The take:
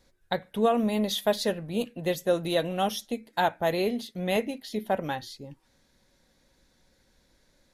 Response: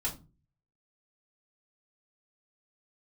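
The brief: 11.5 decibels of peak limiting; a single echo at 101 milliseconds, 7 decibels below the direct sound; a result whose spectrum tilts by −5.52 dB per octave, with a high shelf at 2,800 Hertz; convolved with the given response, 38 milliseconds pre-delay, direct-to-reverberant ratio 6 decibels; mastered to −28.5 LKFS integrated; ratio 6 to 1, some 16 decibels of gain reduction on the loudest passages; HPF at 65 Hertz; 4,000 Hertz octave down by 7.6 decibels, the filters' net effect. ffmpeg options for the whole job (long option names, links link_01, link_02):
-filter_complex "[0:a]highpass=65,highshelf=frequency=2800:gain=-3.5,equalizer=frequency=4000:width_type=o:gain=-6.5,acompressor=threshold=-37dB:ratio=6,alimiter=level_in=10.5dB:limit=-24dB:level=0:latency=1,volume=-10.5dB,aecho=1:1:101:0.447,asplit=2[link_01][link_02];[1:a]atrim=start_sample=2205,adelay=38[link_03];[link_02][link_03]afir=irnorm=-1:irlink=0,volume=-9.5dB[link_04];[link_01][link_04]amix=inputs=2:normalize=0,volume=14dB"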